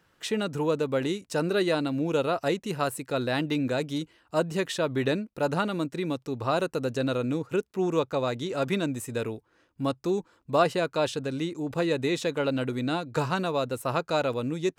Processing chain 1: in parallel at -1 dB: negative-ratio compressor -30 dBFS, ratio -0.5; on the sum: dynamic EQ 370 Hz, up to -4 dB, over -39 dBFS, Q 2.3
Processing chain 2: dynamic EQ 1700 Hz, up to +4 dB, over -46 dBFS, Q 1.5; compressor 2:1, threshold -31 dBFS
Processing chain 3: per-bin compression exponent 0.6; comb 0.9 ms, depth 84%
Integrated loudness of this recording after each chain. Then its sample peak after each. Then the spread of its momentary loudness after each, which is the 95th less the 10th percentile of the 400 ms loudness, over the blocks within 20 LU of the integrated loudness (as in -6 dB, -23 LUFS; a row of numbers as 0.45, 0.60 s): -26.0, -32.5, -24.0 LUFS; -10.5, -16.5, -9.5 dBFS; 4, 3, 4 LU